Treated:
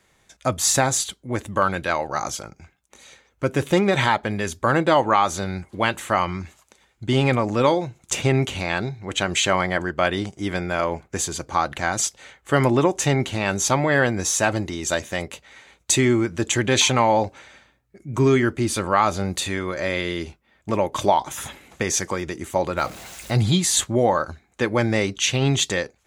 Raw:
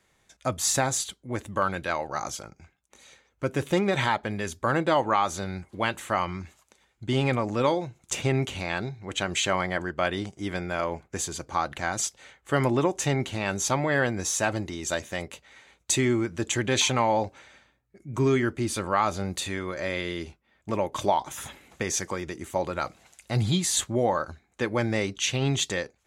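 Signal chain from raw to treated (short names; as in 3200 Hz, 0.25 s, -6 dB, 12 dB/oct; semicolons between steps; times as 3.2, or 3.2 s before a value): 22.77–23.33 zero-crossing step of -41 dBFS; gain +5.5 dB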